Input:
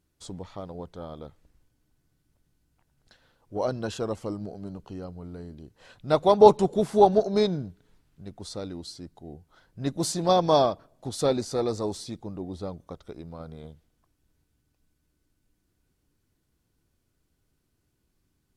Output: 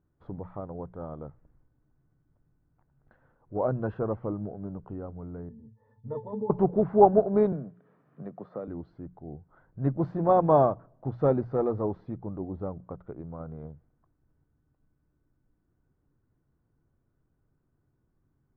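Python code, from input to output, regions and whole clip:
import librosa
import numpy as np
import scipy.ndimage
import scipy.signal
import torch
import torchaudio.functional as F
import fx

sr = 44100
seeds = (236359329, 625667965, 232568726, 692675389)

y = fx.chain(x, sr, fx.over_compress(threshold_db=-19.0, ratio=-1.0),
    fx.octave_resonator(note='A', decay_s=0.16), at=(5.49, 6.5))
y = fx.chain(y, sr, fx.highpass(hz=180.0, slope=24),
    fx.comb(ms=1.7, depth=0.4),
    fx.band_squash(depth_pct=70), at=(7.52, 8.68))
y = scipy.signal.sosfilt(scipy.signal.butter(4, 1500.0, 'lowpass', fs=sr, output='sos'), y)
y = fx.peak_eq(y, sr, hz=130.0, db=7.0, octaves=0.49)
y = fx.hum_notches(y, sr, base_hz=60, count=3)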